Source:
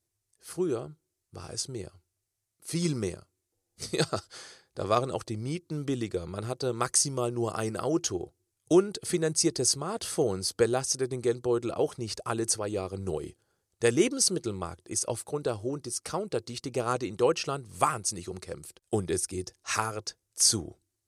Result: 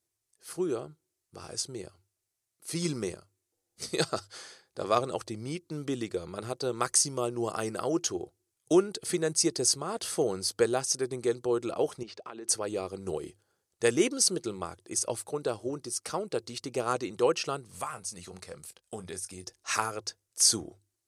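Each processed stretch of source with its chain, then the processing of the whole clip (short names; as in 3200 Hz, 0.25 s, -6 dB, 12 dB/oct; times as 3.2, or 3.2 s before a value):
12.03–12.49 compressor 10:1, threshold -36 dBFS + Chebyshev band-pass 230–3400 Hz
17.71–19.44 bell 340 Hz -12.5 dB 0.37 oct + doubler 22 ms -12 dB + compressor 2:1, threshold -38 dBFS
whole clip: low shelf 140 Hz -10 dB; notches 50/100 Hz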